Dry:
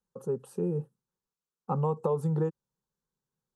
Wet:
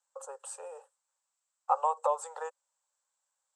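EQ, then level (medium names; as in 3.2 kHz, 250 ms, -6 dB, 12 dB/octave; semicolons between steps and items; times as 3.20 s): steep high-pass 560 Hz 72 dB/octave; resonant low-pass 7.8 kHz, resonance Q 8.4; treble shelf 3.8 kHz -7.5 dB; +7.5 dB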